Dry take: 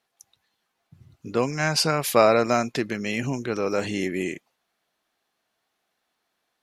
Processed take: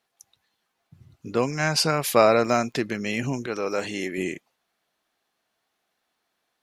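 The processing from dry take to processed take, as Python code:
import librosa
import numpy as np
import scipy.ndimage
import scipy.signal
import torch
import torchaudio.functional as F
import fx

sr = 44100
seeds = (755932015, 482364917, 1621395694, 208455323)

y = fx.dmg_crackle(x, sr, seeds[0], per_s=28.0, level_db=-40.0, at=(1.29, 2.8), fade=0.02)
y = fx.low_shelf(y, sr, hz=220.0, db=-10.5, at=(3.46, 4.18))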